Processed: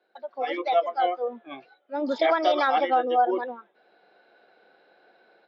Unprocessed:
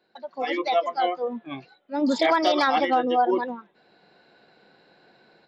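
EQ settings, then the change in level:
high-frequency loss of the air 150 metres
loudspeaker in its box 490–5,800 Hz, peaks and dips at 1,000 Hz −8 dB, 1,900 Hz −6 dB, 2,700 Hz −5 dB, 4,400 Hz −9 dB
+3.0 dB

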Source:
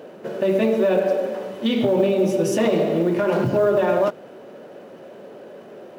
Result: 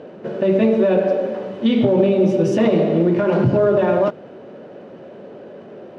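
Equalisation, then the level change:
low-pass filter 4,500 Hz 12 dB per octave
low-shelf EQ 140 Hz +3.5 dB
low-shelf EQ 360 Hz +6 dB
0.0 dB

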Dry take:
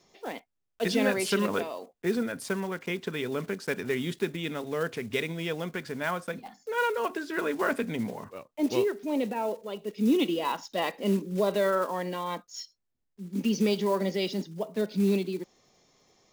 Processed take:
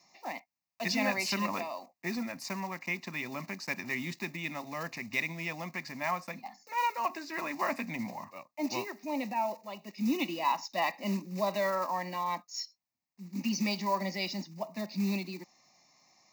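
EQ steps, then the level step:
high-pass filter 160 Hz
low-shelf EQ 360 Hz −5.5 dB
phaser with its sweep stopped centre 2,200 Hz, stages 8
+3.0 dB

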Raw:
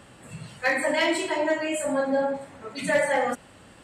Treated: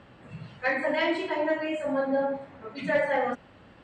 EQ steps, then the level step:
high-frequency loss of the air 210 metres
−1.5 dB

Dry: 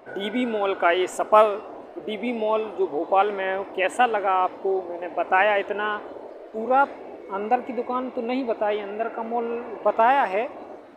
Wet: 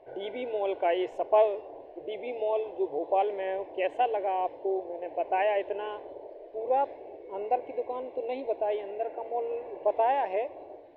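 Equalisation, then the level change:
high-frequency loss of the air 310 metres
phaser with its sweep stopped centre 540 Hz, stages 4
−3.0 dB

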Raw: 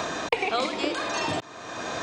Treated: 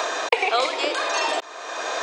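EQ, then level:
high-pass filter 420 Hz 24 dB per octave
+5.5 dB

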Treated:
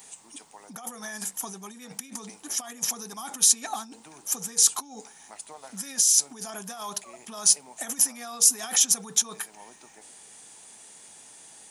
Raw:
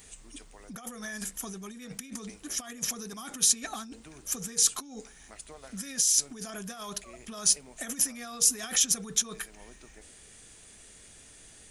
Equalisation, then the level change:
Chebyshev high-pass filter 180 Hz, order 2
parametric band 870 Hz +14.5 dB 0.66 octaves
high-shelf EQ 3,700 Hz +9 dB
−2.0 dB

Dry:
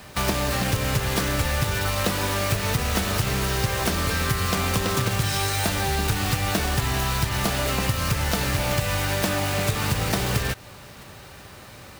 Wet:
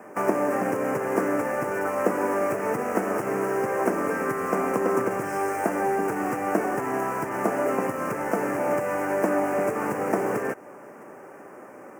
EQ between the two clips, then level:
high-pass filter 300 Hz 24 dB per octave
Butterworth band-reject 3,800 Hz, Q 0.77
spectral tilt −4 dB per octave
+1.5 dB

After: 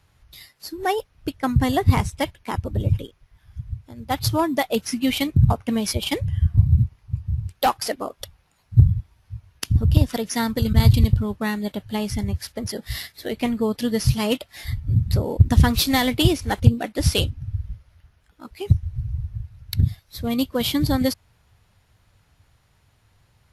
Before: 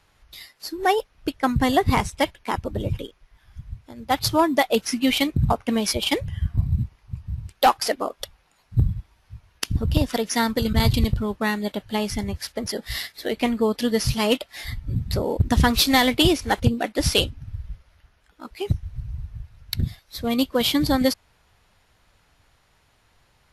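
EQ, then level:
parametric band 100 Hz +11.5 dB 1.7 octaves
high-shelf EQ 10,000 Hz +6 dB
−3.5 dB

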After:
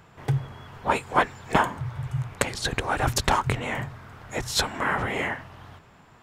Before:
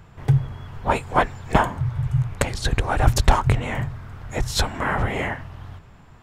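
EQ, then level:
dynamic equaliser 670 Hz, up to −4 dB, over −32 dBFS, Q 1.9
low-shelf EQ 70 Hz −10.5 dB
low-shelf EQ 160 Hz −8 dB
0.0 dB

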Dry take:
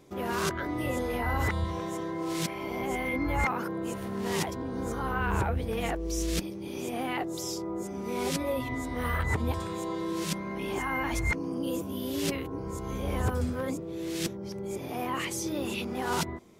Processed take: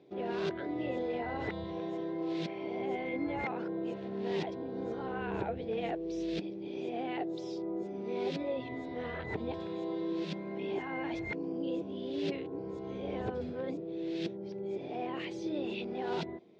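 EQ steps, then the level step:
loudspeaker in its box 190–3,200 Hz, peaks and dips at 250 Hz −6 dB, 550 Hz −5 dB, 1,200 Hz −8 dB, 3,000 Hz −8 dB
low-shelf EQ 290 Hz −5.5 dB
flat-topped bell 1,400 Hz −10.5 dB
+2.5 dB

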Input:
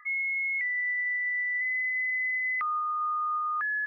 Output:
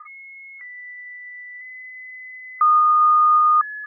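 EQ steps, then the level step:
low-pass with resonance 1,200 Hz, resonance Q 6.7
high-frequency loss of the air 450 metres
mains-hum notches 60/120/180/240 Hz
+1.5 dB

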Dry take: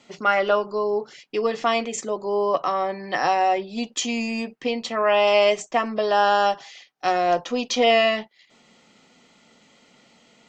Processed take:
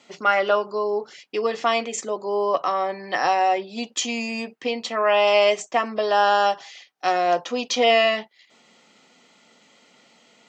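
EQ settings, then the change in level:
high-pass filter 290 Hz 6 dB per octave
+1.0 dB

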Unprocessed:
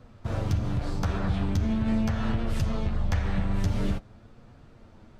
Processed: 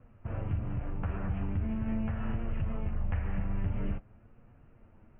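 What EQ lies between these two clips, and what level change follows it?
Butterworth low-pass 2,900 Hz 96 dB per octave
low-shelf EQ 110 Hz +4.5 dB
−8.5 dB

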